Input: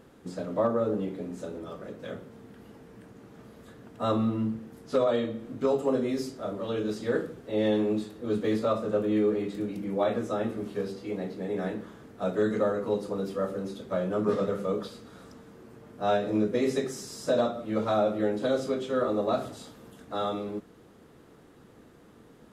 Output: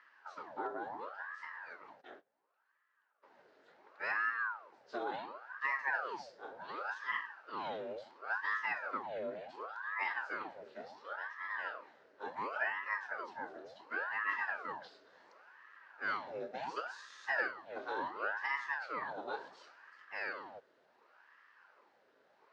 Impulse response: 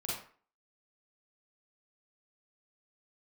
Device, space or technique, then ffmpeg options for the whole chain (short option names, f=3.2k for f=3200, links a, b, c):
voice changer toy: -filter_complex "[0:a]asplit=3[a][b][c];[a]afade=t=out:st=2:d=0.02[d];[b]agate=range=-20dB:threshold=-39dB:ratio=16:detection=peak,afade=t=in:st=2:d=0.02,afade=t=out:st=3.22:d=0.02[e];[c]afade=t=in:st=3.22:d=0.02[f];[d][e][f]amix=inputs=3:normalize=0,aeval=exprs='val(0)*sin(2*PI*840*n/s+840*0.8/0.7*sin(2*PI*0.7*n/s))':c=same,highpass=530,equalizer=f=720:t=q:w=4:g=-6,equalizer=f=1.1k:t=q:w=4:g=-4,equalizer=f=1.6k:t=q:w=4:g=4,equalizer=f=2.3k:t=q:w=4:g=-3,equalizer=f=3.4k:t=q:w=4:g=-4,lowpass=f=5k:w=0.5412,lowpass=f=5k:w=1.3066,volume=-6dB"